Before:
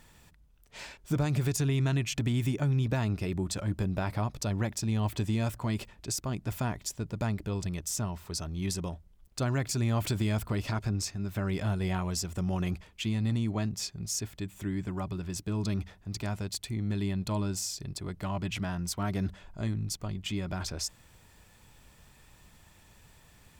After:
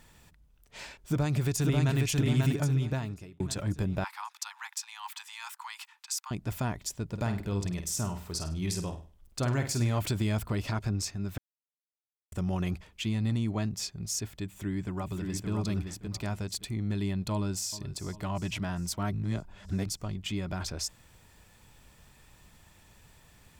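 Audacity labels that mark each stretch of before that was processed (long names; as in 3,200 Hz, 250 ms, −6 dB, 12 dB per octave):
1.010000	1.980000	delay throw 540 ms, feedback 45%, level −2 dB
2.660000	3.400000	fade out
4.040000	6.310000	Butterworth high-pass 830 Hz 96 dB per octave
7.070000	9.990000	flutter between parallel walls apart 8.6 metres, dies away in 0.37 s
11.380000	12.320000	silence
14.440000	15.500000	delay throw 570 ms, feedback 20%, level −4.5 dB
17.320000	17.750000	delay throw 400 ms, feedback 60%, level −16 dB
19.130000	19.860000	reverse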